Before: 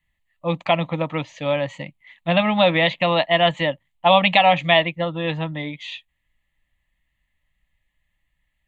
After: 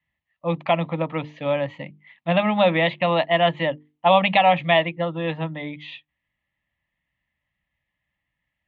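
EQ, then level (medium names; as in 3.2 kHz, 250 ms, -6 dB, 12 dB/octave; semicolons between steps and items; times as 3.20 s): high-pass 96 Hz 12 dB/octave; distance through air 260 m; hum notches 50/100/150/200/250/300/350/400/450 Hz; 0.0 dB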